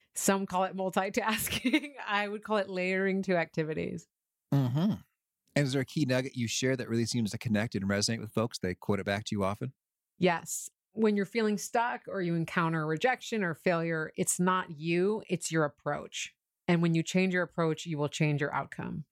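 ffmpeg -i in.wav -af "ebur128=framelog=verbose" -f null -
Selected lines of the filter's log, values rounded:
Integrated loudness:
  I:         -30.9 LUFS
  Threshold: -41.1 LUFS
Loudness range:
  LRA:         1.9 LU
  Threshold: -51.2 LUFS
  LRA low:   -32.1 LUFS
  LRA high:  -30.3 LUFS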